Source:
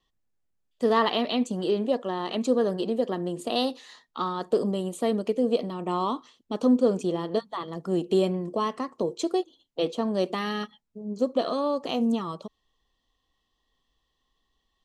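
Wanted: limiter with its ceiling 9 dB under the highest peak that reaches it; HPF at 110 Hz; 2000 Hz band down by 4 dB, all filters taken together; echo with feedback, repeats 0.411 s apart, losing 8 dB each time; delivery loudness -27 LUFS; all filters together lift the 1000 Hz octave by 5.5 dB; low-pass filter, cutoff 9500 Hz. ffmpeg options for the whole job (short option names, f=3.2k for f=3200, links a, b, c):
-af "highpass=110,lowpass=9.5k,equalizer=f=1k:t=o:g=8.5,equalizer=f=2k:t=o:g=-7.5,alimiter=limit=-17.5dB:level=0:latency=1,aecho=1:1:411|822|1233|1644|2055:0.398|0.159|0.0637|0.0255|0.0102,volume=1dB"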